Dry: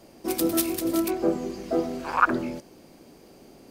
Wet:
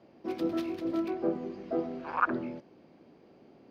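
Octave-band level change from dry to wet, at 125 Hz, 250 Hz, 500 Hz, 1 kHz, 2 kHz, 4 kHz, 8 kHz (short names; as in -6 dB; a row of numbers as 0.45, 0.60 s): -6.5 dB, -6.0 dB, -6.0 dB, -7.0 dB, -7.5 dB, -14.0 dB, under -30 dB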